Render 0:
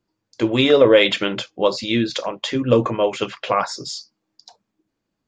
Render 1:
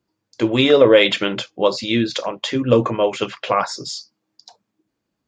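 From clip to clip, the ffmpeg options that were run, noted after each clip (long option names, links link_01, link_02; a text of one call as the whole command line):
ffmpeg -i in.wav -af "highpass=42,volume=1dB" out.wav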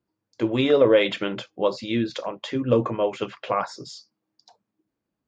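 ffmpeg -i in.wav -af "highshelf=frequency=2700:gain=-8.5,volume=-5dB" out.wav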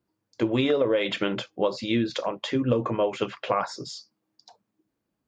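ffmpeg -i in.wav -af "acompressor=threshold=-21dB:ratio=12,volume=2dB" out.wav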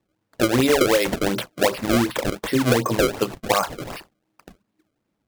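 ffmpeg -i in.wav -af "acrusher=samples=28:mix=1:aa=0.000001:lfo=1:lforange=44.8:lforate=2.7,volume=5dB" out.wav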